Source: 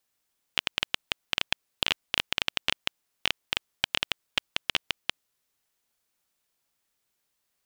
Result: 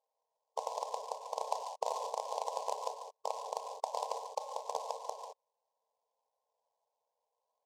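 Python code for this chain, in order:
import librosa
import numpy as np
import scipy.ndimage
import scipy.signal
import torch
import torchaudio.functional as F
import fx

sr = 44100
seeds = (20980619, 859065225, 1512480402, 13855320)

y = fx.brickwall_bandpass(x, sr, low_hz=430.0, high_hz=1100.0)
y = fx.rev_gated(y, sr, seeds[0], gate_ms=240, shape='flat', drr_db=1.5)
y = fx.noise_mod_delay(y, sr, seeds[1], noise_hz=5000.0, depth_ms=0.038)
y = F.gain(torch.from_numpy(y), 5.0).numpy()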